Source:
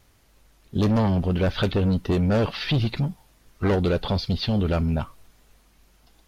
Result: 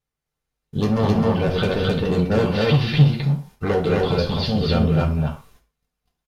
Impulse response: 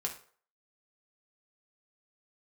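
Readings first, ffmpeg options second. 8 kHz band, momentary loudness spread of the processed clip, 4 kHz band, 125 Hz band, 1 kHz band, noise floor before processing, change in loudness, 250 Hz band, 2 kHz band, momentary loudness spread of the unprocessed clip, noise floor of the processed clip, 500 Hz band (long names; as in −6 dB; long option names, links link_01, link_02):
can't be measured, 8 LU, +3.5 dB, +4.5 dB, +4.5 dB, −59 dBFS, +4.0 dB, +3.0 dB, +4.5 dB, 7 LU, −83 dBFS, +5.5 dB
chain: -filter_complex "[0:a]aecho=1:1:204.1|262.4:0.316|0.891,agate=range=-26dB:threshold=-47dB:ratio=16:detection=peak[link_01];[1:a]atrim=start_sample=2205,afade=type=out:start_time=0.21:duration=0.01,atrim=end_sample=9702[link_02];[link_01][link_02]afir=irnorm=-1:irlink=0"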